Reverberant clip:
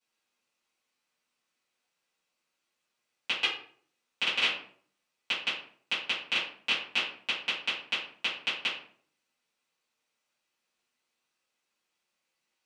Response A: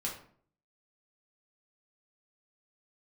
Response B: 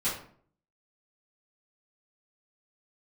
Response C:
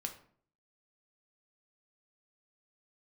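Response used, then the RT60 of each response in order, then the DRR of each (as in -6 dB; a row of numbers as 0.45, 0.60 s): B; 0.55, 0.55, 0.55 s; -4.0, -13.0, 3.5 dB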